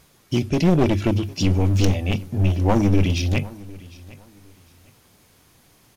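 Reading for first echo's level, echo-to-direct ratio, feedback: −21.0 dB, −20.5 dB, 25%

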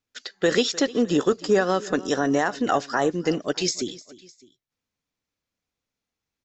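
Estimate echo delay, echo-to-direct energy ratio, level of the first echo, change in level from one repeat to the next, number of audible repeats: 304 ms, −19.0 dB, −20.0 dB, −5.0 dB, 2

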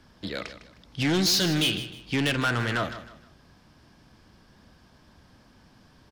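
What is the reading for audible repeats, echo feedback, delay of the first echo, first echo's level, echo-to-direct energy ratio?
3, 32%, 155 ms, −13.0 dB, −12.5 dB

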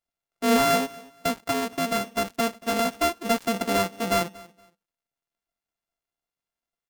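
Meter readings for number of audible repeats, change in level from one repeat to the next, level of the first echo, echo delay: 2, −12.5 dB, −22.0 dB, 234 ms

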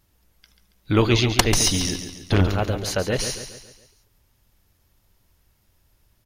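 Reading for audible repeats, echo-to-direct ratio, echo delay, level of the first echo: 4, −8.0 dB, 139 ms, −9.0 dB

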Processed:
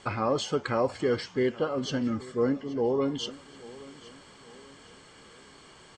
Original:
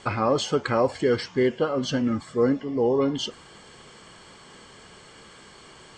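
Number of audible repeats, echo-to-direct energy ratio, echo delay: 3, −18.5 dB, 826 ms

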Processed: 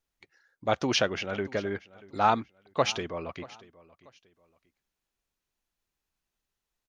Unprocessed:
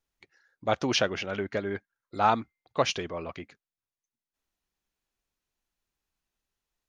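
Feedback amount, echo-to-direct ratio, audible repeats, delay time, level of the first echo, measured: 31%, −20.5 dB, 2, 635 ms, −21.0 dB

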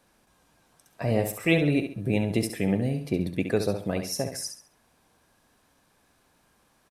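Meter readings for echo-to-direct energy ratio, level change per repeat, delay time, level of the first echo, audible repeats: −7.5 dB, −10.0 dB, 68 ms, −8.0 dB, 3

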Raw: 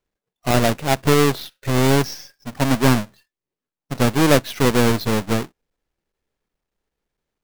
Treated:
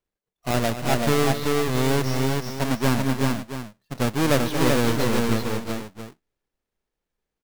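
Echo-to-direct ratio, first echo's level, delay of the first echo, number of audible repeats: −1.5 dB, −11.5 dB, 228 ms, 4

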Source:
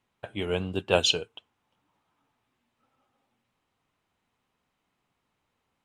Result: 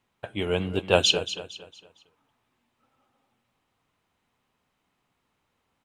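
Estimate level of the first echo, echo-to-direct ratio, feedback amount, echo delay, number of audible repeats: −12.5 dB, −12.0 dB, 37%, 229 ms, 3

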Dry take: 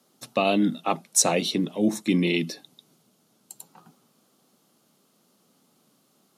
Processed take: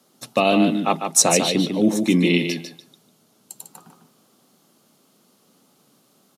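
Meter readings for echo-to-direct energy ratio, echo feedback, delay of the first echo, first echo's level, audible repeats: −6.5 dB, 16%, 149 ms, −6.5 dB, 2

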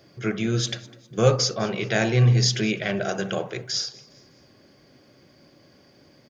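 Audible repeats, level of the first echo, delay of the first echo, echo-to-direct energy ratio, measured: 2, −22.0 dB, 203 ms, −21.0 dB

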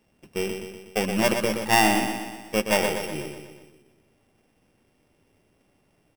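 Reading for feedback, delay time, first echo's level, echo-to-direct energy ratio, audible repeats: 55%, 122 ms, −6.5 dB, −5.0 dB, 6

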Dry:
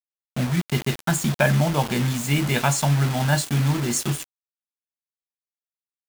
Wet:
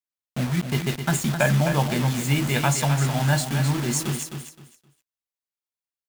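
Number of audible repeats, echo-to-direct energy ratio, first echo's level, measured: 3, −8.0 dB, −8.0 dB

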